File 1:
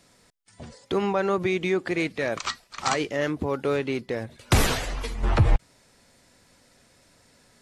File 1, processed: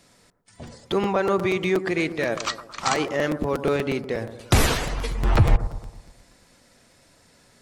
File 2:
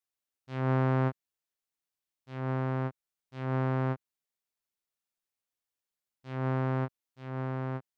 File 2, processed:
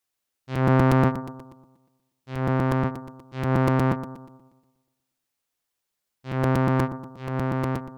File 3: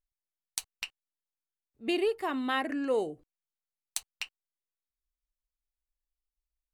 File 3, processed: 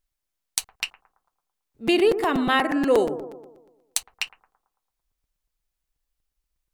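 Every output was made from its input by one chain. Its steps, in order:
bucket-brigade echo 111 ms, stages 1024, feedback 52%, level -11 dB; crackling interface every 0.12 s, samples 256, repeat, from 0.31 s; normalise loudness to -24 LUFS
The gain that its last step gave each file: +2.0 dB, +9.0 dB, +9.5 dB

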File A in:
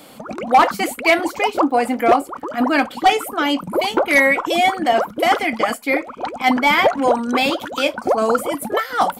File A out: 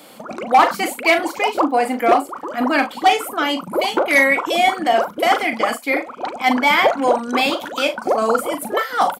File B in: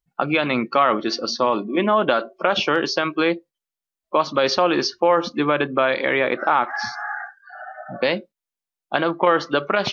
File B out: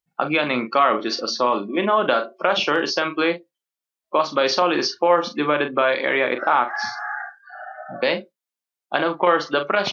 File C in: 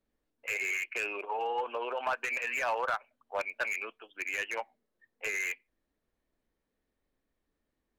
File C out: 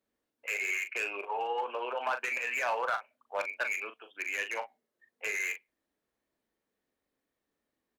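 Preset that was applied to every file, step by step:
high-pass 240 Hz 6 dB/octave; doubling 40 ms -9 dB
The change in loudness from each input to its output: 0.0 LU, 0.0 LU, 0.0 LU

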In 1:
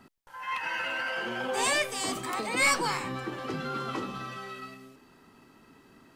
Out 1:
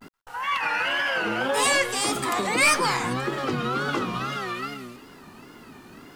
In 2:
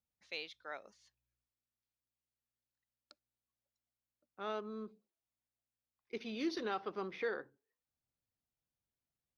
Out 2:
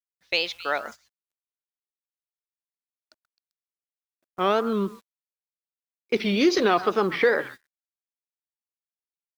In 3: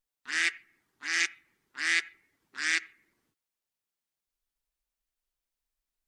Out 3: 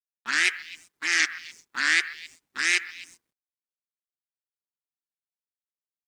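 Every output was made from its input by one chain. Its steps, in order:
wow and flutter 150 cents; in parallel at +3 dB: compression 12:1, threshold -37 dBFS; on the sum: repeats whose band climbs or falls 131 ms, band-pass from 1.3 kHz, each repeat 1.4 oct, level -12 dB; bit crusher 11-bit; gate -52 dBFS, range -17 dB; normalise loudness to -24 LUFS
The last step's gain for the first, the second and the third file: +3.0 dB, +12.0 dB, +3.0 dB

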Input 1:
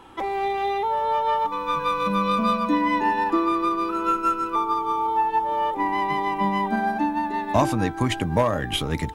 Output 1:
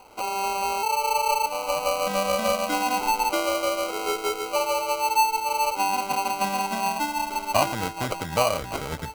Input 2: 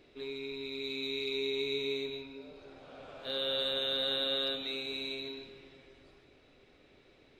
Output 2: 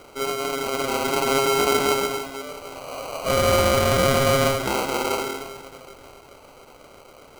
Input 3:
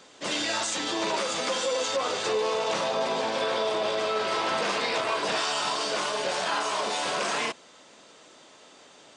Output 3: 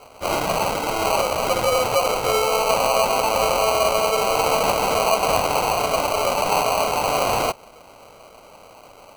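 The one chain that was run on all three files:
sample-and-hold 25×; resonant low shelf 440 Hz -6.5 dB, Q 1.5; peak normalisation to -6 dBFS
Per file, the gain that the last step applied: -1.5 dB, +17.5 dB, +8.0 dB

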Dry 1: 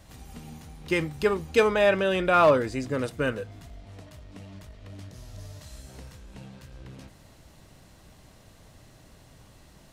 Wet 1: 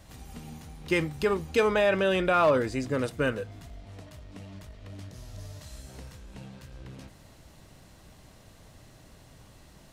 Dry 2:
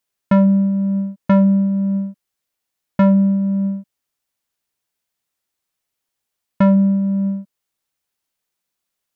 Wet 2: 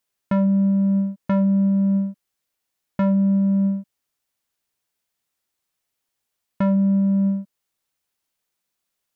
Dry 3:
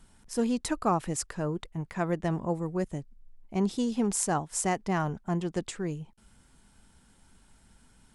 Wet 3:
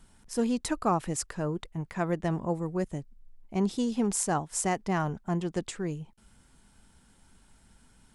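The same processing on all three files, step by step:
peak limiter -15 dBFS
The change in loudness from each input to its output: -2.0 LU, -3.5 LU, 0.0 LU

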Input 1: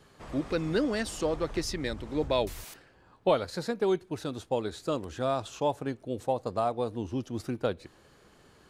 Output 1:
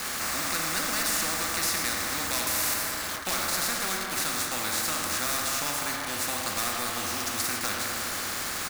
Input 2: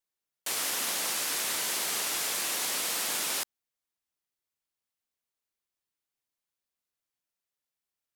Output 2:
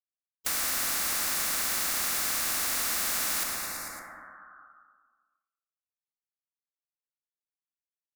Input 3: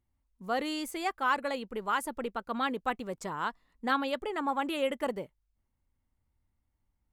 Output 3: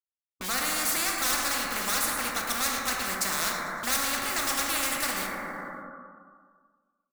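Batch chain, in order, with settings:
high-pass 83 Hz 24 dB/octave; resonant low shelf 780 Hz -13 dB, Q 3; band-stop 2.5 kHz, Q 12; harmonic-percussive split percussive -7 dB; peaking EQ 12 kHz -3 dB 1.6 oct; in parallel at 0 dB: compression 8:1, threshold -43 dBFS; on the sum: overload inside the chain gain 28 dB; static phaser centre 630 Hz, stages 8; bit crusher 10-bit; feedback delay 112 ms, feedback 54%, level -17.5 dB; plate-style reverb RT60 1.7 s, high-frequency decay 0.3×, DRR 1 dB; spectrum-flattening compressor 4:1; normalise loudness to -27 LUFS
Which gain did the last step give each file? +10.5 dB, +5.0 dB, +11.5 dB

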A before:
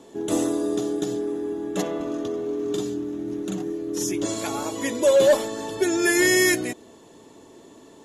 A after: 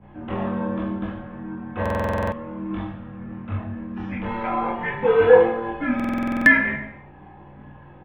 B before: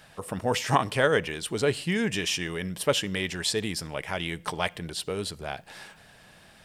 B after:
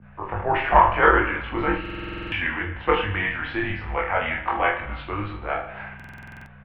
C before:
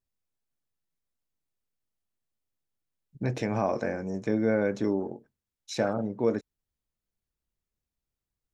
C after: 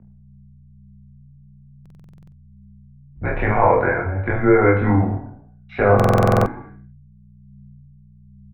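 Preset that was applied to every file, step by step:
hum notches 60/120/180/240/300/360/420 Hz; expander -47 dBFS; graphic EQ 125/250/500/1000 Hz +6/-8/-6/+5 dB; in parallel at +0.5 dB: level held to a coarse grid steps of 11 dB; on the sum: hum 60 Hz, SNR 14 dB; chorus voices 4, 0.57 Hz, delay 26 ms, depth 1.2 ms; on a send: reverse bouncing-ball echo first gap 20 ms, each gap 1.25×, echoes 5; on the sum: gated-style reverb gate 370 ms falling, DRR 9.5 dB; mistuned SSB -98 Hz 160–2500 Hz; buffer glitch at 1.81/5.95 s, samples 2048, times 10; peak normalisation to -2 dBFS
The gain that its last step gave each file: +1.5 dB, +5.0 dB, +11.5 dB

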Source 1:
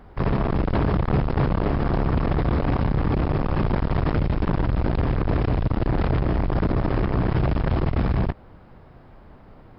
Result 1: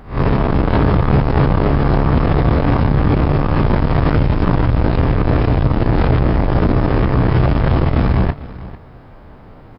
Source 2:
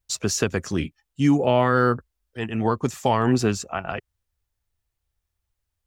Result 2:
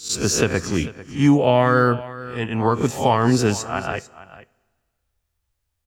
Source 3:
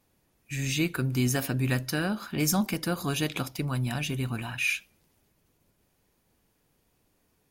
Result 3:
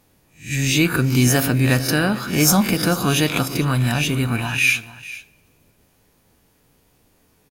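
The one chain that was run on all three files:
reverse spectral sustain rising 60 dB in 0.34 s; delay 446 ms -17 dB; two-slope reverb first 0.24 s, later 1.7 s, from -18 dB, DRR 15 dB; peak normalisation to -2 dBFS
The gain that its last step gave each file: +6.0 dB, +2.5 dB, +9.0 dB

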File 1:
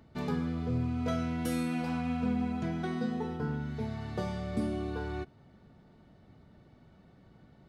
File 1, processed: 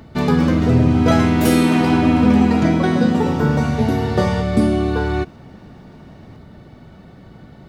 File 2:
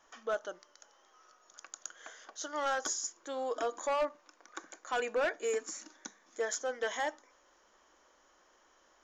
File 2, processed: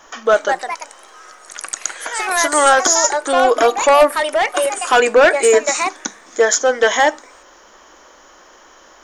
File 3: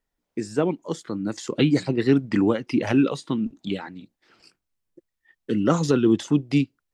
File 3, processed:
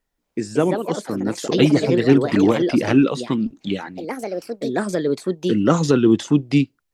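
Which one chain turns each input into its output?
ever faster or slower copies 258 ms, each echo +4 st, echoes 2, each echo -6 dB; peak normalisation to -1.5 dBFS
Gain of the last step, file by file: +16.5 dB, +21.0 dB, +4.0 dB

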